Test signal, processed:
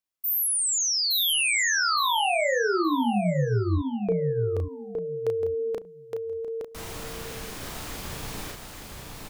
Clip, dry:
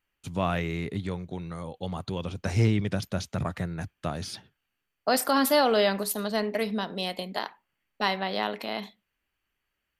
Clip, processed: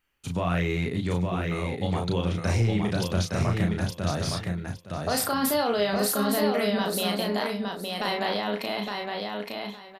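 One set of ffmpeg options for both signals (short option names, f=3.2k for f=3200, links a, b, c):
-filter_complex "[0:a]alimiter=limit=-21.5dB:level=0:latency=1:release=11,asplit=2[a][b];[b]adelay=34,volume=-4dB[c];[a][c]amix=inputs=2:normalize=0,asplit=2[d][e];[e]aecho=0:1:865|1730|2595:0.631|0.133|0.0278[f];[d][f]amix=inputs=2:normalize=0,volume=3.5dB"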